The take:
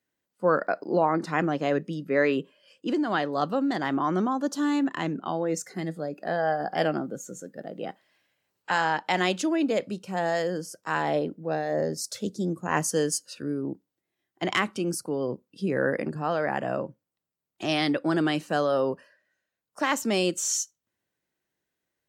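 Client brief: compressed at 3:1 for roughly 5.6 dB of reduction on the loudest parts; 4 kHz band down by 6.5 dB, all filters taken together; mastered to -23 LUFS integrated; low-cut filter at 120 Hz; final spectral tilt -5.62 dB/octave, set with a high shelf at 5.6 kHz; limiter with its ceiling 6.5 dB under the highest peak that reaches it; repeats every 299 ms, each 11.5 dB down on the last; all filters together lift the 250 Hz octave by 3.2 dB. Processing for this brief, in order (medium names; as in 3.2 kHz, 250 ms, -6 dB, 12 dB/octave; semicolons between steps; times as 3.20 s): high-pass 120 Hz; peaking EQ 250 Hz +4.5 dB; peaking EQ 4 kHz -6 dB; treble shelf 5.6 kHz -9 dB; compression 3:1, threshold -26 dBFS; peak limiter -21 dBFS; feedback delay 299 ms, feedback 27%, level -11.5 dB; trim +8.5 dB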